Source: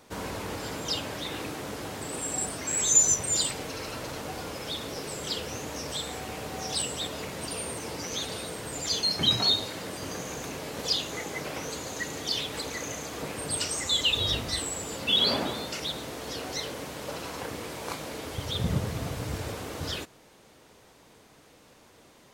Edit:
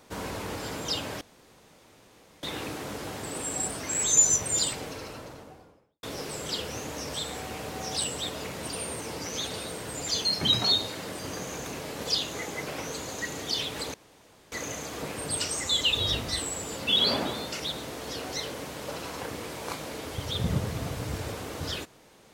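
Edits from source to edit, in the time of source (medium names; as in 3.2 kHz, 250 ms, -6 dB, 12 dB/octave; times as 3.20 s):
1.21 s: insert room tone 1.22 s
3.36–4.81 s: studio fade out
12.72 s: insert room tone 0.58 s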